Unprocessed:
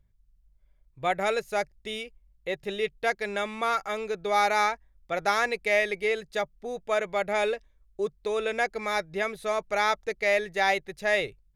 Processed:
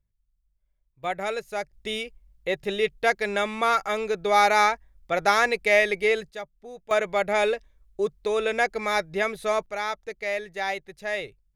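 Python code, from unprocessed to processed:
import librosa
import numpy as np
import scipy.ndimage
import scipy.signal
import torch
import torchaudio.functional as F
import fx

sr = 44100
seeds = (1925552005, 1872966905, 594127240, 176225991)

y = fx.gain(x, sr, db=fx.steps((0.0, -10.0), (1.04, -2.5), (1.73, 4.5), (6.3, -7.0), (6.91, 3.5), (9.66, -4.5)))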